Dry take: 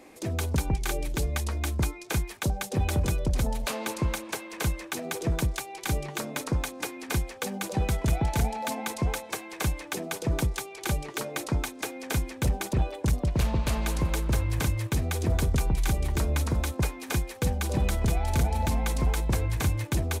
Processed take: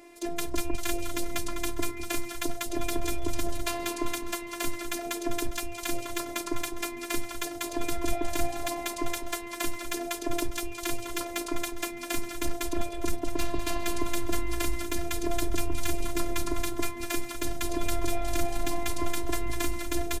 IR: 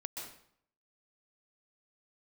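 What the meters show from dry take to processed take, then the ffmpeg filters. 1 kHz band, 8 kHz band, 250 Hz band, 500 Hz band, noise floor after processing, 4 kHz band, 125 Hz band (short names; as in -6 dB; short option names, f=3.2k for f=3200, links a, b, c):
-0.5 dB, +0.5 dB, -0.5 dB, +0.5 dB, -39 dBFS, +0.5 dB, -14.5 dB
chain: -filter_complex "[0:a]asplit=6[a][b][c][d][e][f];[b]adelay=203,afreqshift=-110,volume=-9.5dB[g];[c]adelay=406,afreqshift=-220,volume=-15.7dB[h];[d]adelay=609,afreqshift=-330,volume=-21.9dB[i];[e]adelay=812,afreqshift=-440,volume=-28.1dB[j];[f]adelay=1015,afreqshift=-550,volume=-34.3dB[k];[a][g][h][i][j][k]amix=inputs=6:normalize=0,afftfilt=real='hypot(re,im)*cos(PI*b)':imag='0':win_size=512:overlap=0.75,aeval=exprs='0.251*(cos(1*acos(clip(val(0)/0.251,-1,1)))-cos(1*PI/2))+0.0141*(cos(2*acos(clip(val(0)/0.251,-1,1)))-cos(2*PI/2))':c=same,volume=3dB"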